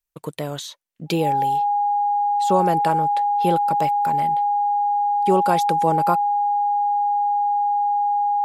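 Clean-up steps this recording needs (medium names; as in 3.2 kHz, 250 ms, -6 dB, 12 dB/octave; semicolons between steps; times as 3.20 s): band-stop 820 Hz, Q 30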